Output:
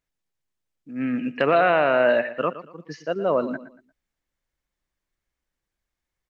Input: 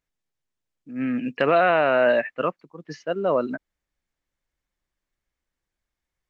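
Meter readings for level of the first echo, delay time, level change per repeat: -14.0 dB, 117 ms, -10.5 dB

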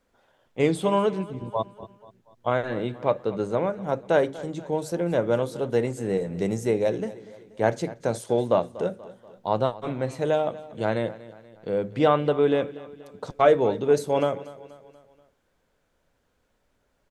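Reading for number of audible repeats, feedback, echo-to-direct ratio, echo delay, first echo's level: 3, 50%, -17.0 dB, 240 ms, -18.0 dB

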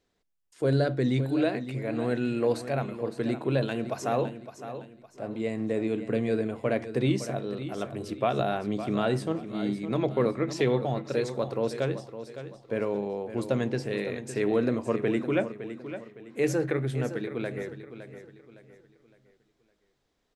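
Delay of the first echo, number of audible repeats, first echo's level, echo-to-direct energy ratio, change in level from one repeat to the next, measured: 561 ms, 3, -11.5 dB, -11.0 dB, -9.0 dB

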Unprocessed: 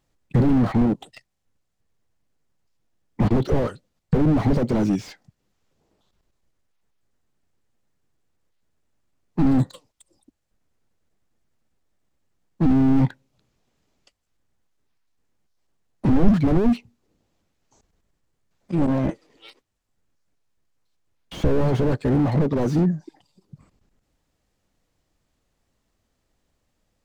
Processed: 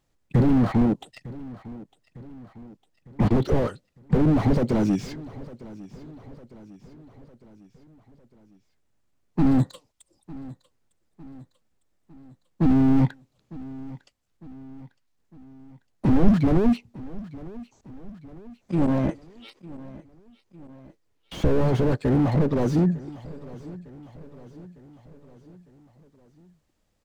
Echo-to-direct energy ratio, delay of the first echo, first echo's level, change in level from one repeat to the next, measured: -17.5 dB, 904 ms, -19.0 dB, -5.5 dB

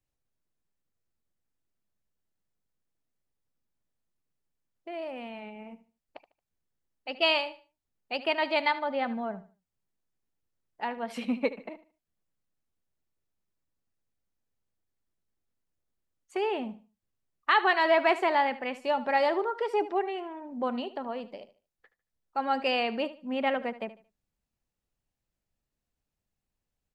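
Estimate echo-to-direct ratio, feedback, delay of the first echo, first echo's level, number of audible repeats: -15.0 dB, 27%, 75 ms, -15.5 dB, 2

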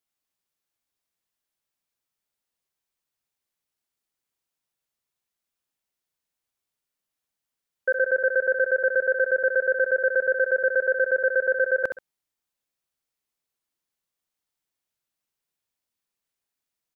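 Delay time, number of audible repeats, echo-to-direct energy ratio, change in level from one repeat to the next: 66 ms, 2, -7.5 dB, -11.0 dB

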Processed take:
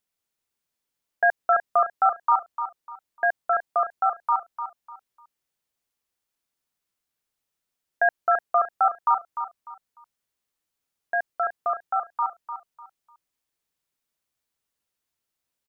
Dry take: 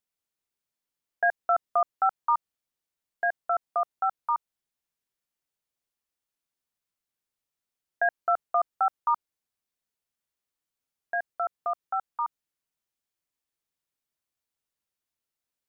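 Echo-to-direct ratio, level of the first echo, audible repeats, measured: -9.0 dB, -9.5 dB, 3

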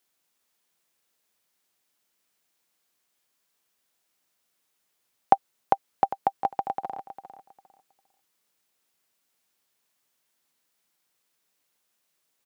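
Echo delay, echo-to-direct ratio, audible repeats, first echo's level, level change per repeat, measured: 402 ms, -12.0 dB, 2, -12.0 dB, -13.5 dB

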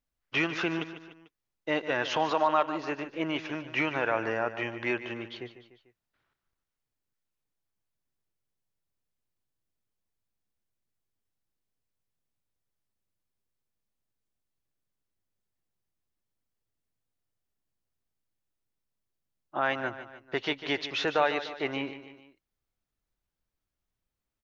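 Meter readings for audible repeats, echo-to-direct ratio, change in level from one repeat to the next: 3, -11.5 dB, -6.0 dB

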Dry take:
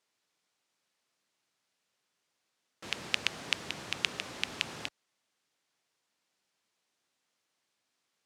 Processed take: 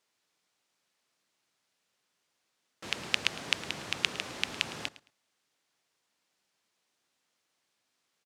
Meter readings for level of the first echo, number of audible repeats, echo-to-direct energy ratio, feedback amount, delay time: -18.5 dB, 2, -18.5 dB, 21%, 109 ms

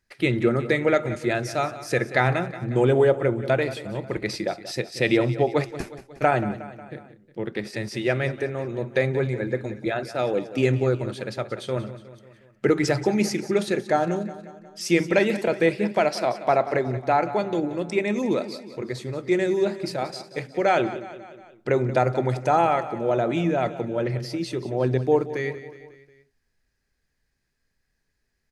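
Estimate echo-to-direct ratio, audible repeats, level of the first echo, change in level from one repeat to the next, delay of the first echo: -13.0 dB, 4, -14.5 dB, -5.0 dB, 181 ms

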